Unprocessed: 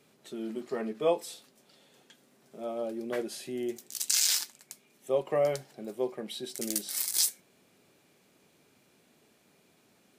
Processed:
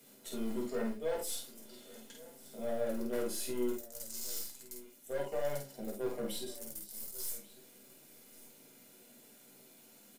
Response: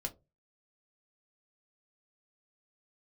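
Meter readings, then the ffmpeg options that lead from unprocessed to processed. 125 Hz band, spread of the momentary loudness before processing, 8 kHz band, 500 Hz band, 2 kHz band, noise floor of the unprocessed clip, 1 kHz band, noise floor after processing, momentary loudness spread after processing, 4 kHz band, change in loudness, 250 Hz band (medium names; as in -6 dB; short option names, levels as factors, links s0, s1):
-3.5 dB, 17 LU, -12.0 dB, -5.5 dB, -6.5 dB, -66 dBFS, -7.5 dB, -60 dBFS, 20 LU, -13.0 dB, -8.0 dB, -2.5 dB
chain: -filter_complex "[0:a]highpass=210,aemphasis=mode=production:type=50fm,bandreject=f=410:w=12,areverse,acompressor=threshold=0.0141:ratio=6,areverse,alimiter=level_in=1.12:limit=0.0631:level=0:latency=1:release=372,volume=0.891,asplit=2[s0][s1];[s1]adynamicsmooth=sensitivity=6.5:basefreq=630,volume=0.631[s2];[s0][s2]amix=inputs=2:normalize=0,acrusher=bits=6:mode=log:mix=0:aa=0.000001,aeval=exprs='0.0794*(cos(1*acos(clip(val(0)/0.0794,-1,1)))-cos(1*PI/2))+0.00282*(cos(8*acos(clip(val(0)/0.0794,-1,1)))-cos(8*PI/2))':c=same,asoftclip=type=hard:threshold=0.0224,asplit=2[s3][s4];[s4]adelay=49,volume=0.668[s5];[s3][s5]amix=inputs=2:normalize=0,aecho=1:1:1142:0.1[s6];[1:a]atrim=start_sample=2205[s7];[s6][s7]afir=irnorm=-1:irlink=0"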